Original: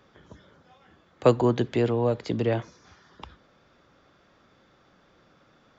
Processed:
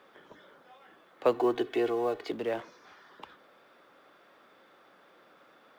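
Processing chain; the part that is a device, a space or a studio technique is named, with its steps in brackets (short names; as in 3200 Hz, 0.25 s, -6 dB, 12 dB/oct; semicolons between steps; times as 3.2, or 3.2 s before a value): phone line with mismatched companding (BPF 370–3500 Hz; G.711 law mismatch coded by mu); 1.34–2.32 comb 2.7 ms, depth 86%; gain -5 dB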